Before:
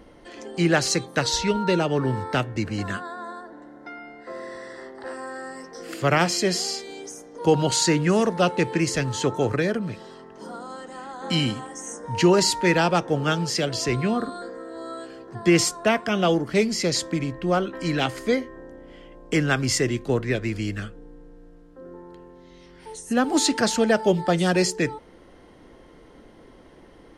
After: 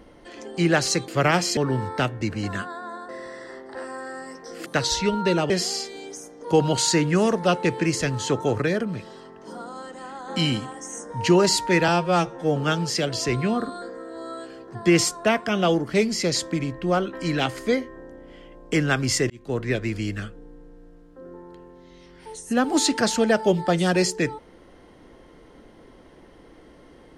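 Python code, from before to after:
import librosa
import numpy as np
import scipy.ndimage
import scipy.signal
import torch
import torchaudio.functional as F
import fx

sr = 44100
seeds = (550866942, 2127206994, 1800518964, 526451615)

y = fx.edit(x, sr, fx.swap(start_s=1.08, length_s=0.84, other_s=5.95, other_length_s=0.49),
    fx.cut(start_s=3.44, length_s=0.94),
    fx.stretch_span(start_s=12.82, length_s=0.34, factor=2.0),
    fx.fade_in_span(start_s=19.9, length_s=0.37), tone=tone)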